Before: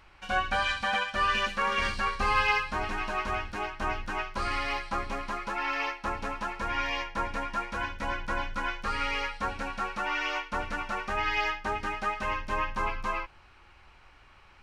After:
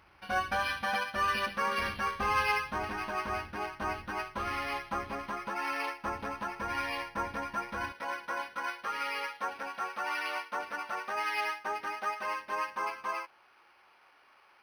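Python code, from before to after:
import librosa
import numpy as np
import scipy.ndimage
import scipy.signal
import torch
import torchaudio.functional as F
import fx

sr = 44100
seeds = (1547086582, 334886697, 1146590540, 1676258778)

y = fx.highpass(x, sr, hz=fx.steps((0.0, 74.0), (7.92, 430.0)), slope=12)
y = np.interp(np.arange(len(y)), np.arange(len(y))[::6], y[::6])
y = y * librosa.db_to_amplitude(-2.0)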